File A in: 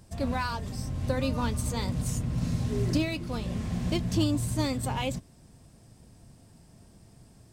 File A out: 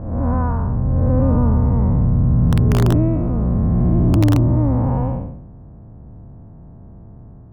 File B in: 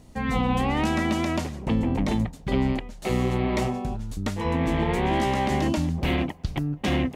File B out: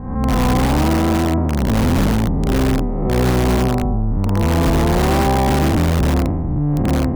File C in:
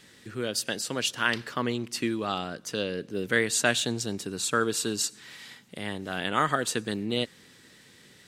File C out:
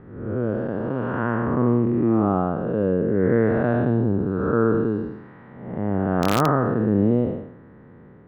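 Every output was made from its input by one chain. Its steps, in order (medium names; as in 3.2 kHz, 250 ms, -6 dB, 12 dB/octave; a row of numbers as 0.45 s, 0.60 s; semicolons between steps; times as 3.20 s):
spectral blur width 296 ms; low-pass 1.2 kHz 24 dB/octave; bass shelf 150 Hz +7 dB; in parallel at -5 dB: integer overflow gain 18.5 dB; on the sum: peak normalisation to -6 dBFS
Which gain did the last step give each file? +8.5 dB, +6.0 dB, +8.5 dB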